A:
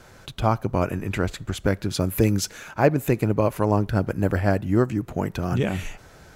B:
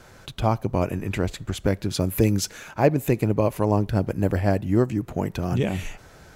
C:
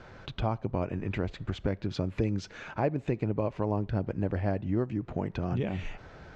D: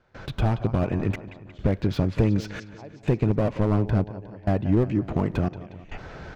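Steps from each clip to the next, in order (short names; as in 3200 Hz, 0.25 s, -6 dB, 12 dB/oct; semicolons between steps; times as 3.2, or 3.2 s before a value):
dynamic EQ 1400 Hz, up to -7 dB, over -43 dBFS, Q 2.4
compressor 2:1, threshold -32 dBFS, peak gain reduction 11 dB; Gaussian blur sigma 2 samples
step gate ".xxxxxxx.." 104 bpm -24 dB; feedback echo 0.18 s, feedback 55%, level -17 dB; slew limiter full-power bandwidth 20 Hz; gain +8.5 dB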